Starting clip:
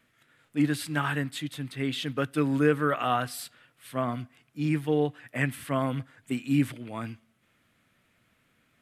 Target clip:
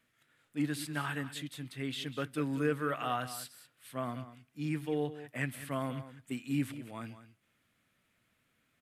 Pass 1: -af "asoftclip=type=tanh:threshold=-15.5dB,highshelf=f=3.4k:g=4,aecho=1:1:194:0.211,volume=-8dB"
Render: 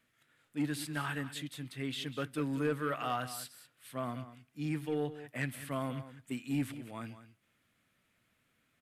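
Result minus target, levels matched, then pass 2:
soft clip: distortion +14 dB
-af "asoftclip=type=tanh:threshold=-7dB,highshelf=f=3.4k:g=4,aecho=1:1:194:0.211,volume=-8dB"

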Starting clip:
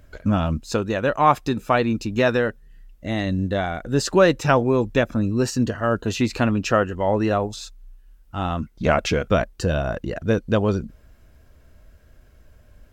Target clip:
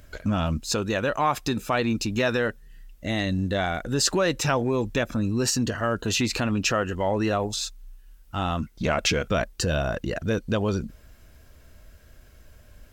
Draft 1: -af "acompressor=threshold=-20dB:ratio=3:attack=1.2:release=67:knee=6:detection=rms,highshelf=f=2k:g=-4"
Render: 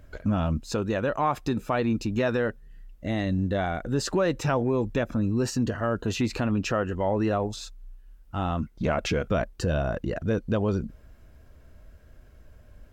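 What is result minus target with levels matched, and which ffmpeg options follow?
4000 Hz band -7.5 dB
-af "acompressor=threshold=-20dB:ratio=3:attack=1.2:release=67:knee=6:detection=rms,highshelf=f=2k:g=7.5"

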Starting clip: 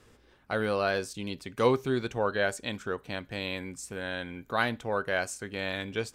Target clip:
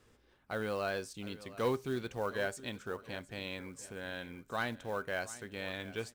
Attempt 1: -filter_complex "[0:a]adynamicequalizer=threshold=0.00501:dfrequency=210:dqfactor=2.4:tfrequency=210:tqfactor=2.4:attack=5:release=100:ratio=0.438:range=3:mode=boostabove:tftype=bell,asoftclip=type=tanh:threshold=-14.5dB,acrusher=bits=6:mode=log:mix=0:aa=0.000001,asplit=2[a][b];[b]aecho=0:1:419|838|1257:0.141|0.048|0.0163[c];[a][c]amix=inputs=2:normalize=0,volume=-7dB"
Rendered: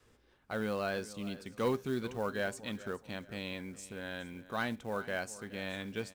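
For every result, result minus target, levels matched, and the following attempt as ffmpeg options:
echo 0.295 s early; 250 Hz band +3.0 dB
-filter_complex "[0:a]adynamicequalizer=threshold=0.00501:dfrequency=210:dqfactor=2.4:tfrequency=210:tqfactor=2.4:attack=5:release=100:ratio=0.438:range=3:mode=boostabove:tftype=bell,asoftclip=type=tanh:threshold=-14.5dB,acrusher=bits=6:mode=log:mix=0:aa=0.000001,asplit=2[a][b];[b]aecho=0:1:714|1428|2142:0.141|0.048|0.0163[c];[a][c]amix=inputs=2:normalize=0,volume=-7dB"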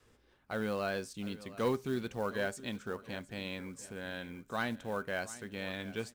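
250 Hz band +3.0 dB
-filter_complex "[0:a]asoftclip=type=tanh:threshold=-14.5dB,acrusher=bits=6:mode=log:mix=0:aa=0.000001,asplit=2[a][b];[b]aecho=0:1:714|1428|2142:0.141|0.048|0.0163[c];[a][c]amix=inputs=2:normalize=0,volume=-7dB"

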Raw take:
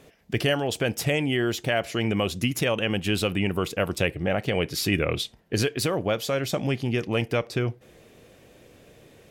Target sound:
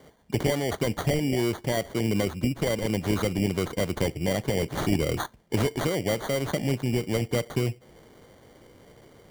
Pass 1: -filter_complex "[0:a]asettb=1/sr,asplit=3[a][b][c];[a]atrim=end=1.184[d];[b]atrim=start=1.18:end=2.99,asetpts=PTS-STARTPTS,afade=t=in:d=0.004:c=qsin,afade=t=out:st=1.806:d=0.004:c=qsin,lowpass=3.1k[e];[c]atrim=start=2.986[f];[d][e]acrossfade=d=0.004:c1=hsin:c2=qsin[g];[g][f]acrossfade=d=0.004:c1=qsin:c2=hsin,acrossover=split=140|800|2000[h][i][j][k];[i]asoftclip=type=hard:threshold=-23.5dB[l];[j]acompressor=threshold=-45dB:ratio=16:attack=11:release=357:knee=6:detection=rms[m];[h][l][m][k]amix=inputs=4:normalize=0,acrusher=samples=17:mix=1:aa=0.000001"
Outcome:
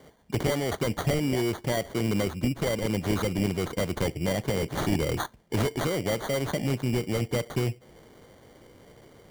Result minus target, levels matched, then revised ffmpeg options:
hard clip: distortion +34 dB
-filter_complex "[0:a]asettb=1/sr,asplit=3[a][b][c];[a]atrim=end=1.184[d];[b]atrim=start=1.18:end=2.99,asetpts=PTS-STARTPTS,afade=t=in:d=0.004:c=qsin,afade=t=out:st=1.806:d=0.004:c=qsin,lowpass=3.1k[e];[c]atrim=start=2.986[f];[d][e]acrossfade=d=0.004:c1=hsin:c2=qsin[g];[g][f]acrossfade=d=0.004:c1=qsin:c2=hsin,acrossover=split=140|800|2000[h][i][j][k];[i]asoftclip=type=hard:threshold=-15.5dB[l];[j]acompressor=threshold=-45dB:ratio=16:attack=11:release=357:knee=6:detection=rms[m];[h][l][m][k]amix=inputs=4:normalize=0,acrusher=samples=17:mix=1:aa=0.000001"

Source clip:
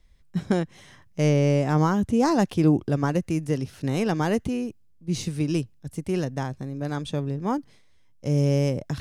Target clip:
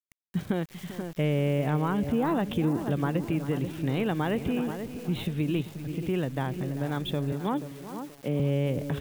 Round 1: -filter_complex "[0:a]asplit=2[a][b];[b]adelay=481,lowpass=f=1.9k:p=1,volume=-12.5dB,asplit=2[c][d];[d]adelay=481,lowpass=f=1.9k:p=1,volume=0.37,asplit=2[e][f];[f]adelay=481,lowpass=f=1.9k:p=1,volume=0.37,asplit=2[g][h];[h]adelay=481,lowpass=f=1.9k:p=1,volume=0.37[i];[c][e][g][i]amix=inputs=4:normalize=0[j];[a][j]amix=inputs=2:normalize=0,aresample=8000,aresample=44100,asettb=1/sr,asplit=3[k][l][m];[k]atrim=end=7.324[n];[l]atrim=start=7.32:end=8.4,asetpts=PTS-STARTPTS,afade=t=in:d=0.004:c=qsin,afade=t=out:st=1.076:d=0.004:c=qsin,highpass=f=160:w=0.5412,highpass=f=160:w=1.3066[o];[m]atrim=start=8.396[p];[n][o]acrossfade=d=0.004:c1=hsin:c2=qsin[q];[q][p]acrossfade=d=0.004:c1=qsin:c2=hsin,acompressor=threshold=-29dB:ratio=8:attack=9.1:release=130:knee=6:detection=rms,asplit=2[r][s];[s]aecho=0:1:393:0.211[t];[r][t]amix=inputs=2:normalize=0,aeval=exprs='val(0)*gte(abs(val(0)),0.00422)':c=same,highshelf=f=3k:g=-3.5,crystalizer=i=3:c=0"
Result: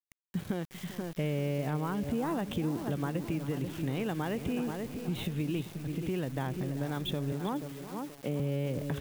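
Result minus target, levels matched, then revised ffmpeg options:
compressor: peak gain reduction +6 dB
-filter_complex "[0:a]asplit=2[a][b];[b]adelay=481,lowpass=f=1.9k:p=1,volume=-12.5dB,asplit=2[c][d];[d]adelay=481,lowpass=f=1.9k:p=1,volume=0.37,asplit=2[e][f];[f]adelay=481,lowpass=f=1.9k:p=1,volume=0.37,asplit=2[g][h];[h]adelay=481,lowpass=f=1.9k:p=1,volume=0.37[i];[c][e][g][i]amix=inputs=4:normalize=0[j];[a][j]amix=inputs=2:normalize=0,aresample=8000,aresample=44100,asettb=1/sr,asplit=3[k][l][m];[k]atrim=end=7.324[n];[l]atrim=start=7.32:end=8.4,asetpts=PTS-STARTPTS,afade=t=in:d=0.004:c=qsin,afade=t=out:st=1.076:d=0.004:c=qsin,highpass=f=160:w=0.5412,highpass=f=160:w=1.3066[o];[m]atrim=start=8.396[p];[n][o]acrossfade=d=0.004:c1=hsin:c2=qsin[q];[q][p]acrossfade=d=0.004:c1=qsin:c2=hsin,acompressor=threshold=-22dB:ratio=8:attack=9.1:release=130:knee=6:detection=rms,asplit=2[r][s];[s]aecho=0:1:393:0.211[t];[r][t]amix=inputs=2:normalize=0,aeval=exprs='val(0)*gte(abs(val(0)),0.00422)':c=same,highshelf=f=3k:g=-3.5,crystalizer=i=3:c=0"

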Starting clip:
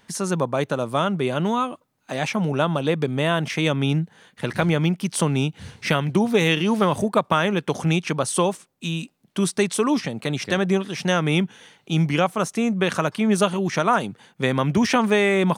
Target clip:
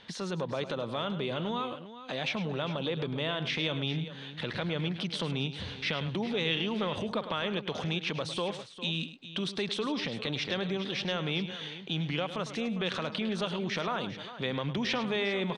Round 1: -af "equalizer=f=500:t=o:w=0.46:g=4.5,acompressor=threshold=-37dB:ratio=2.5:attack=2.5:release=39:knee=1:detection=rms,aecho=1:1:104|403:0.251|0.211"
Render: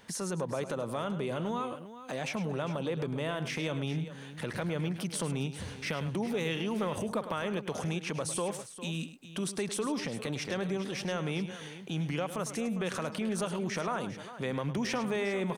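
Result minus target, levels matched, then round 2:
4000 Hz band -6.5 dB
-af "equalizer=f=500:t=o:w=0.46:g=4.5,acompressor=threshold=-37dB:ratio=2.5:attack=2.5:release=39:knee=1:detection=rms,lowpass=f=3.7k:t=q:w=3.3,aecho=1:1:104|403:0.251|0.211"

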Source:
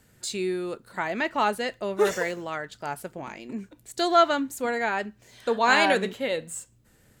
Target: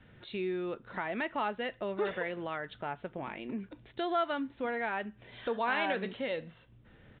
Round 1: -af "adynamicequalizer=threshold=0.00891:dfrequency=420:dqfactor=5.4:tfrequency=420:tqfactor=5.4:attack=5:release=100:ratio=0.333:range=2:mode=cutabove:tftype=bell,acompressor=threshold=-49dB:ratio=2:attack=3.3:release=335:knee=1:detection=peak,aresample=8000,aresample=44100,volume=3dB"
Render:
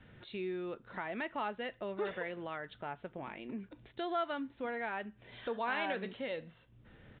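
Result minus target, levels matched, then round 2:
compressor: peak gain reduction +4.5 dB
-af "adynamicequalizer=threshold=0.00891:dfrequency=420:dqfactor=5.4:tfrequency=420:tqfactor=5.4:attack=5:release=100:ratio=0.333:range=2:mode=cutabove:tftype=bell,acompressor=threshold=-40.5dB:ratio=2:attack=3.3:release=335:knee=1:detection=peak,aresample=8000,aresample=44100,volume=3dB"

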